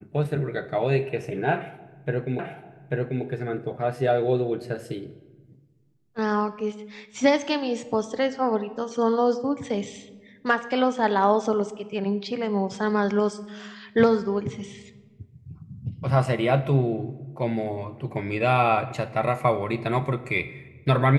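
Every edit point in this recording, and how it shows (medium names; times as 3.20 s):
2.39 s: repeat of the last 0.84 s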